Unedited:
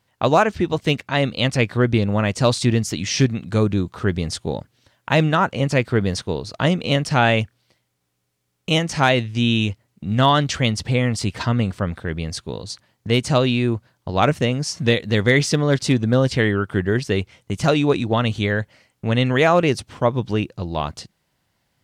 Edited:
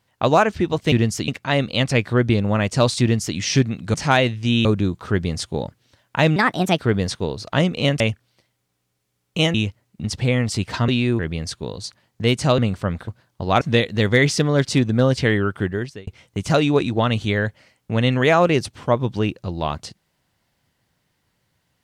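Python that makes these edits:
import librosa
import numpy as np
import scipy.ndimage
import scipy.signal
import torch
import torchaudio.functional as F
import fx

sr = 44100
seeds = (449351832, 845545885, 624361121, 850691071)

y = fx.edit(x, sr, fx.duplicate(start_s=2.65, length_s=0.36, to_s=0.92),
    fx.speed_span(start_s=5.29, length_s=0.57, speed=1.32),
    fx.cut(start_s=7.07, length_s=0.25),
    fx.move(start_s=8.86, length_s=0.71, to_s=3.58),
    fx.cut(start_s=10.07, length_s=0.64),
    fx.swap(start_s=11.55, length_s=0.5, other_s=13.44, other_length_s=0.31),
    fx.cut(start_s=14.28, length_s=0.47),
    fx.fade_out_span(start_s=16.68, length_s=0.53), tone=tone)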